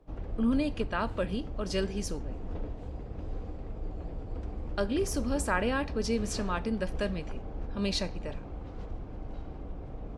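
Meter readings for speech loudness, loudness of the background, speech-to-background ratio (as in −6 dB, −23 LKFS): −32.5 LKFS, −41.0 LKFS, 8.5 dB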